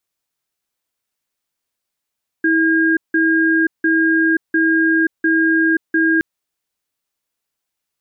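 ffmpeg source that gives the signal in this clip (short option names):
-f lavfi -i "aevalsrc='0.188*(sin(2*PI*324*t)+sin(2*PI*1620*t))*clip(min(mod(t,0.7),0.53-mod(t,0.7))/0.005,0,1)':d=3.77:s=44100"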